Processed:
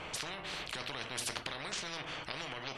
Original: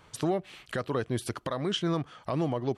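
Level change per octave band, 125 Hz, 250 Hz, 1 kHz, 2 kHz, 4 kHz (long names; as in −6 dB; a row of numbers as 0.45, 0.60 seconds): −17.5, −18.5, −7.0, +2.0, −1.0 decibels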